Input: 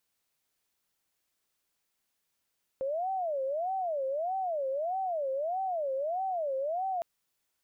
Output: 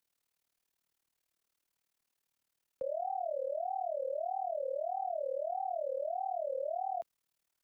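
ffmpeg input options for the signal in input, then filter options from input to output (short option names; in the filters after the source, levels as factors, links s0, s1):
-f lavfi -i "aevalsrc='0.0355*sin(2*PI*(649.5*t-120.5/(2*PI*1.6)*sin(2*PI*1.6*t)))':d=4.21:s=44100"
-filter_complex "[0:a]tremolo=f=38:d=0.919,acrossover=split=190|420[s0][s1][s2];[s0]acrusher=bits=2:mode=log:mix=0:aa=0.000001[s3];[s3][s1][s2]amix=inputs=3:normalize=0"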